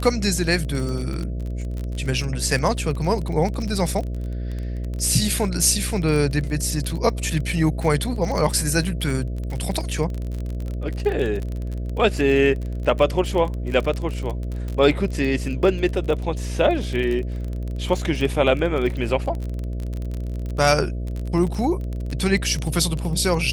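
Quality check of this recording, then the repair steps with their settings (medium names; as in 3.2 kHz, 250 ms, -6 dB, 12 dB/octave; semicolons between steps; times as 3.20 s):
buzz 60 Hz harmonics 11 -27 dBFS
crackle 25 per s -26 dBFS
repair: de-click; de-hum 60 Hz, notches 11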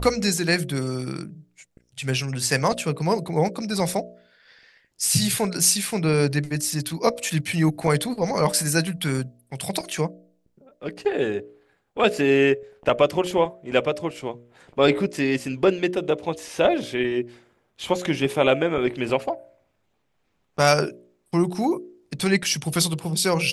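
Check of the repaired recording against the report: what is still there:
nothing left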